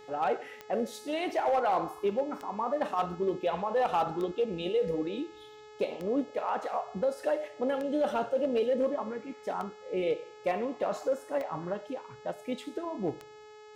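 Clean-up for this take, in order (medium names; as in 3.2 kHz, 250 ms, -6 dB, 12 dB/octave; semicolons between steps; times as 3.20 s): clip repair -21 dBFS; de-click; de-hum 425.6 Hz, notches 18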